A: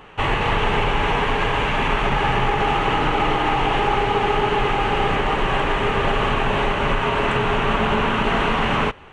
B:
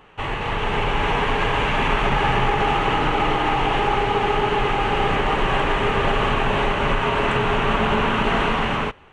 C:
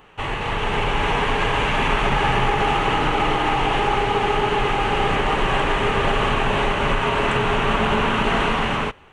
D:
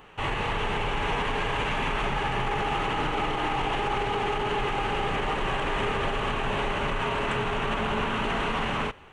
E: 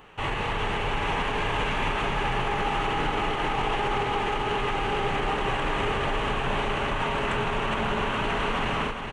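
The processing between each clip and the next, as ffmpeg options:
-af "dynaudnorm=f=200:g=7:m=11.5dB,volume=-6dB"
-af "highshelf=f=6.5k:g=7.5"
-af "alimiter=limit=-18dB:level=0:latency=1:release=63,volume=-1dB"
-af "aecho=1:1:415|830|1245|1660|2075|2490|2905:0.398|0.227|0.129|0.0737|0.042|0.024|0.0137"

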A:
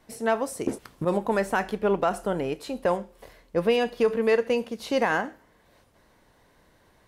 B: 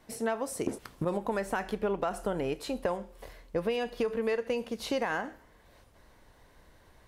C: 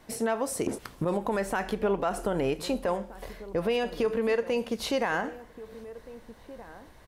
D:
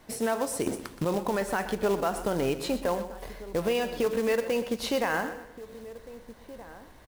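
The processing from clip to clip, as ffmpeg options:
-af "asubboost=boost=2:cutoff=100,acompressor=threshold=-27dB:ratio=6"
-filter_complex "[0:a]alimiter=limit=-23.5dB:level=0:latency=1:release=41,asplit=2[a][b];[b]adelay=1574,volume=-16dB,highshelf=f=4k:g=-35.4[c];[a][c]amix=inputs=2:normalize=0,volume=5dB"
-af "acrusher=bits=4:mode=log:mix=0:aa=0.000001,aecho=1:1:123|246|369:0.224|0.0761|0.0259"

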